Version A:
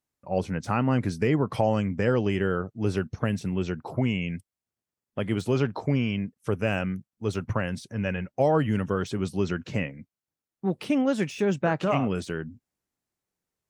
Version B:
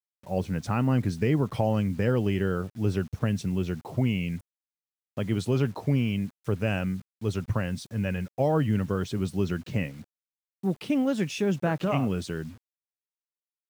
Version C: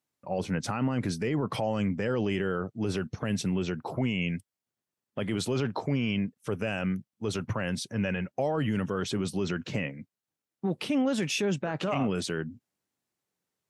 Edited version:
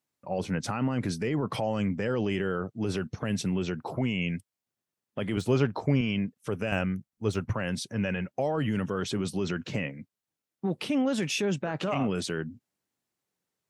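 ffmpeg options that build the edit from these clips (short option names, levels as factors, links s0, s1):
-filter_complex "[0:a]asplit=2[s0][s1];[2:a]asplit=3[s2][s3][s4];[s2]atrim=end=5.372[s5];[s0]atrim=start=5.368:end=6.012[s6];[s3]atrim=start=6.008:end=6.722[s7];[s1]atrim=start=6.718:end=7.542[s8];[s4]atrim=start=7.538[s9];[s5][s6]acrossfade=d=0.004:c1=hsin:c2=hsin[s10];[s10][s7]acrossfade=d=0.004:c1=hsin:c2=hsin[s11];[s11][s8]acrossfade=d=0.004:c1=hsin:c2=hsin[s12];[s12][s9]acrossfade=d=0.004:c1=hsin:c2=hsin"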